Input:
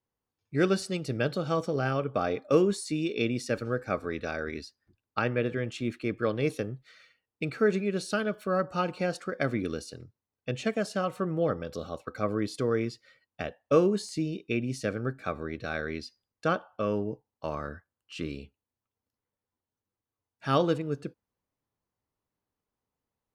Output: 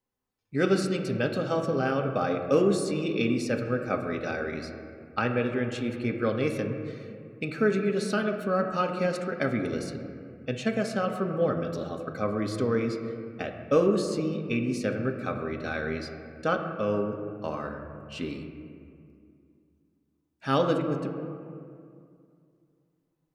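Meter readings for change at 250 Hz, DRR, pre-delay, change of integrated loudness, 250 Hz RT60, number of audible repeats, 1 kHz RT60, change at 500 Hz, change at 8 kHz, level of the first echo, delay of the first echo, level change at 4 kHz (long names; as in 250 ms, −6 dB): +2.5 dB, 3.0 dB, 4 ms, +1.5 dB, 2.9 s, no echo audible, 2.2 s, +2.0 dB, 0.0 dB, no echo audible, no echo audible, +0.5 dB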